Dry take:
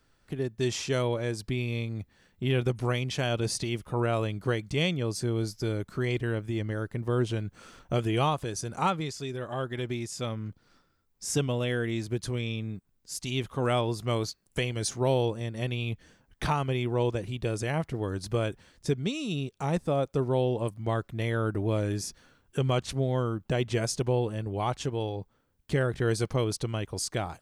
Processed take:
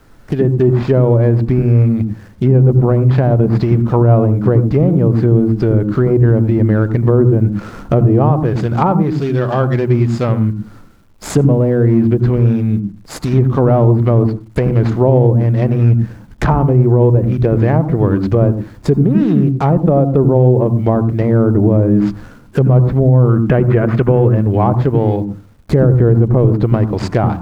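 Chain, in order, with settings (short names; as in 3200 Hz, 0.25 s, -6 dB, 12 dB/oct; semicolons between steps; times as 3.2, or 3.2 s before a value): median filter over 15 samples; treble ducked by the level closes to 750 Hz, closed at -24.5 dBFS; 23.29–24.35 band shelf 1900 Hz +10.5 dB; in parallel at -0.5 dB: compressor 12:1, threshold -41 dBFS, peak gain reduction 19.5 dB; on the sum: requantised 12-bit, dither none; on a send at -14.5 dB: reverb, pre-delay 77 ms; on the sum: maximiser +16.5 dB; gain -1 dB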